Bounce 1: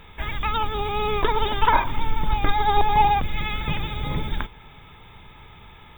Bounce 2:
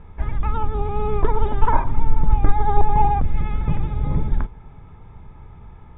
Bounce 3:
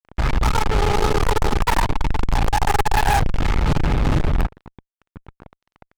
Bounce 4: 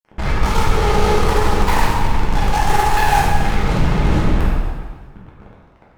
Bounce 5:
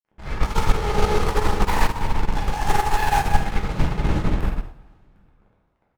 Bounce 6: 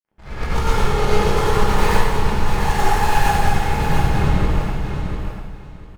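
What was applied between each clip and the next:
low-pass 1.2 kHz 12 dB/octave; bass shelf 220 Hz +9.5 dB; trim -1.5 dB
fuzz box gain 35 dB, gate -33 dBFS; upward expansion 1.5:1, over -28 dBFS
plate-style reverb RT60 1.6 s, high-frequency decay 0.85×, DRR -6 dB; trim -3.5 dB
delay 754 ms -22.5 dB; upward expansion 2.5:1, over -22 dBFS
on a send: feedback delay 695 ms, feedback 20%, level -7 dB; on the sum: plate-style reverb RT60 1 s, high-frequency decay 0.95×, pre-delay 80 ms, DRR -7.5 dB; trim -4.5 dB

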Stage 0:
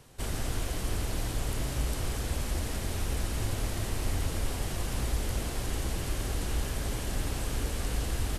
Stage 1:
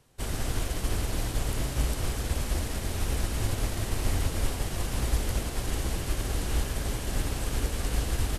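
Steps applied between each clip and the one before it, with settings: upward expansion 1.5:1, over -50 dBFS; trim +5 dB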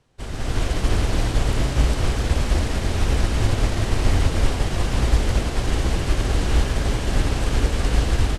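level rider gain up to 9.5 dB; distance through air 71 m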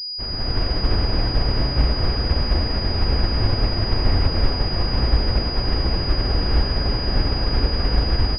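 class-D stage that switches slowly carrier 4.9 kHz

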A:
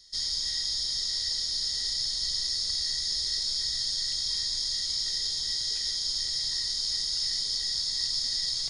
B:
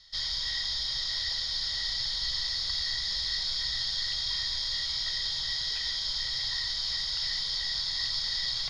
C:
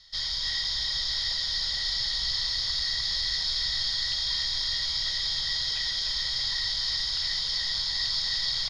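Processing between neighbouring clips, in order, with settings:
FFT filter 130 Hz 0 dB, 210 Hz -4 dB, 310 Hz -19 dB, 530 Hz 0 dB, 970 Hz +6 dB, 3.4 kHz +3 dB, 8.2 kHz -19 dB; trim +3.5 dB
delay 300 ms -5 dB; trim +1.5 dB

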